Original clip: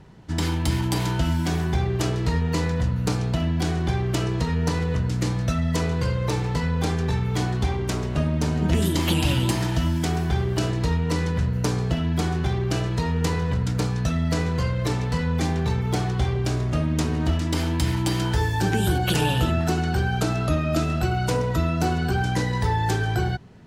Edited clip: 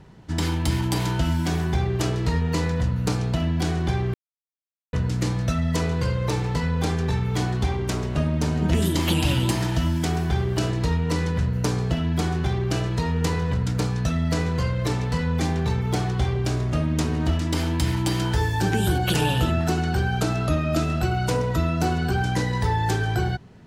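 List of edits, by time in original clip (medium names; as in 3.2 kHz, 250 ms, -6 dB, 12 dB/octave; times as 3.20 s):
4.14–4.93 s: mute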